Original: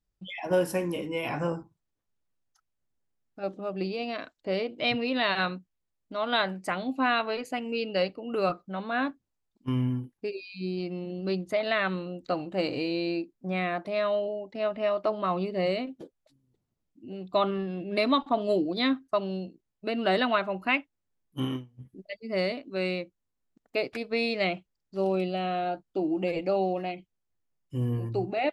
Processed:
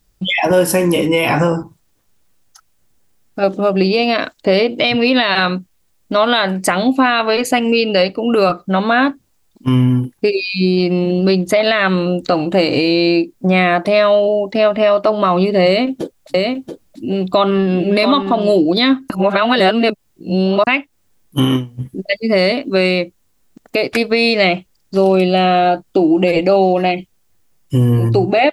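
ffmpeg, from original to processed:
ffmpeg -i in.wav -filter_complex "[0:a]asettb=1/sr,asplit=3[link_01][link_02][link_03];[link_01]atrim=end=15.664[link_04];[link_02]atrim=start=15.66:end=18.54,asetpts=PTS-STARTPTS,afade=type=in:duration=0.004:curve=qsin,afade=type=out:start_time=2.876:duration=0.004:curve=qsin,aecho=1:1:681:0.473,atrim=end_sample=127008[link_05];[link_03]atrim=start=18.536[link_06];[link_04][link_05]acrossfade=duration=0.004:curve1=hsin:curve2=qsin[link_07];[link_07][link_06]acrossfade=duration=0.004:curve1=qsin:curve2=hsin,asplit=3[link_08][link_09][link_10];[link_08]atrim=end=19.102[link_11];[link_09]atrim=start=19.098:end=20.672,asetpts=PTS-STARTPTS,areverse[link_12];[link_10]atrim=start=20.668[link_13];[link_11][link_12]acrossfade=duration=0.004:curve1=hsin:curve2=hsin[link_14];[link_14][link_13]acrossfade=duration=0.004:curve1=hsin:curve2=hsin,highshelf=frequency=4800:gain=6,acompressor=threshold=-33dB:ratio=2.5,alimiter=level_in=24dB:limit=-1dB:release=50:level=0:latency=1,volume=-2.5dB" out.wav

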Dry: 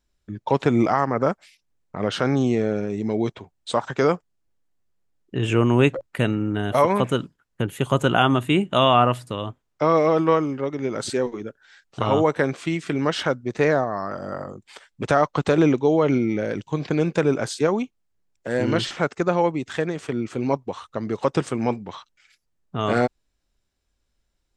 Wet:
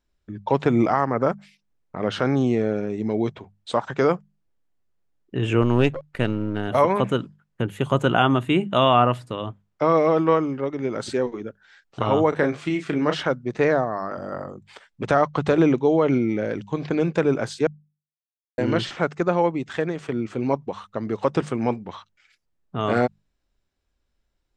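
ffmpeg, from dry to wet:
ffmpeg -i in.wav -filter_complex "[0:a]asettb=1/sr,asplit=3[link_01][link_02][link_03];[link_01]atrim=end=5.624[link_04];[link_02]atrim=start=5.62:end=6.68,asetpts=PTS-STARTPTS,afade=type=in:duration=0.004:curve=qsin,afade=type=out:start_time=1.056:duration=0.004:curve=qsin,aeval=exprs='if(lt(val(0),0),0.447*val(0),val(0))':channel_layout=same[link_05];[link_03]atrim=start=6.676[link_06];[link_04][link_05]acrossfade=duration=0.004:curve1=hsin:curve2=qsin[link_07];[link_07][link_06]acrossfade=duration=0.004:curve1=qsin:curve2=hsin,asettb=1/sr,asplit=3[link_08][link_09][link_10];[link_08]atrim=end=12.294[link_11];[link_09]atrim=start=12.29:end=13.17,asetpts=PTS-STARTPTS,afade=type=in:duration=0.004:curve=qsin,afade=type=out:start_time=0.876:duration=0.004:curve=qsin,asplit=2[link_12][link_13];[link_13]adelay=33,volume=-7dB[link_14];[link_12][link_14]amix=inputs=2:normalize=0,atrim=end_sample=38808[link_15];[link_10]atrim=start=13.166[link_16];[link_11][link_15]acrossfade=duration=0.004:curve1=hsin:curve2=qsin[link_17];[link_17][link_16]acrossfade=duration=0.004:curve1=qsin:curve2=hsin,asplit=3[link_18][link_19][link_20];[link_18]atrim=end=17.67,asetpts=PTS-STARTPTS,afade=type=out:start_time=17.666:duration=0.004:curve=hsin[link_21];[link_19]atrim=start=17.67:end=18.58,asetpts=PTS-STARTPTS,volume=0[link_22];[link_20]atrim=start=18.58,asetpts=PTS-STARTPTS,afade=type=in:duration=0.004:curve=hsin[link_23];[link_21][link_22][link_23]concat=n=3:v=0:a=1,lowpass=frequency=3600:poles=1,bandreject=frequency=50:width_type=h:width=6,bandreject=frequency=100:width_type=h:width=6,bandreject=frequency=150:width_type=h:width=6,bandreject=frequency=200:width_type=h:width=6" out.wav

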